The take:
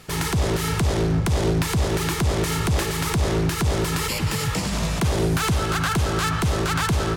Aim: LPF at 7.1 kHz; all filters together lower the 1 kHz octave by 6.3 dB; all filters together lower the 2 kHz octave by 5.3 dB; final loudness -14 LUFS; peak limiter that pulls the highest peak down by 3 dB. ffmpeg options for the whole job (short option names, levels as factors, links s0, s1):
-af "lowpass=7100,equalizer=f=1000:t=o:g=-7,equalizer=f=2000:t=o:g=-4.5,volume=3.55,alimiter=limit=0.562:level=0:latency=1"